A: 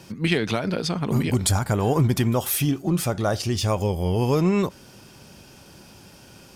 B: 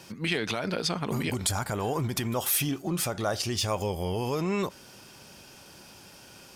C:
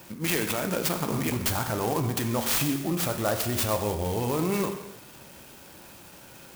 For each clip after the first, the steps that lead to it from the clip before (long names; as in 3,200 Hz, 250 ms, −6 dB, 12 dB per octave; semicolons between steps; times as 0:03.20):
brickwall limiter −15 dBFS, peak gain reduction 6 dB; low-shelf EQ 370 Hz −8.5 dB
reverb whose tail is shaped and stops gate 350 ms falling, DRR 5.5 dB; converter with an unsteady clock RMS 0.062 ms; level +1.5 dB